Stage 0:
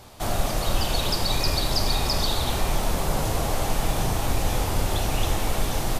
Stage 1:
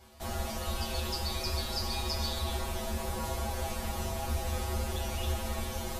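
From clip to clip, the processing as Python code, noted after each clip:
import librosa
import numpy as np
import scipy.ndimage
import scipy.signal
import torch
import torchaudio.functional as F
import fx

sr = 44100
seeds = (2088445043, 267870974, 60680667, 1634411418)

y = fx.comb_fb(x, sr, f0_hz=74.0, decay_s=0.19, harmonics='odd', damping=0.0, mix_pct=100)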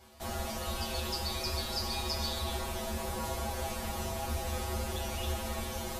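y = fx.low_shelf(x, sr, hz=74.0, db=-6.0)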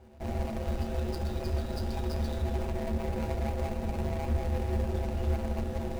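y = scipy.ndimage.median_filter(x, 41, mode='constant')
y = y * 10.0 ** (7.0 / 20.0)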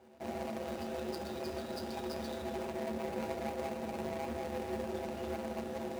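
y = scipy.signal.sosfilt(scipy.signal.butter(2, 230.0, 'highpass', fs=sr, output='sos'), x)
y = y * 10.0 ** (-1.5 / 20.0)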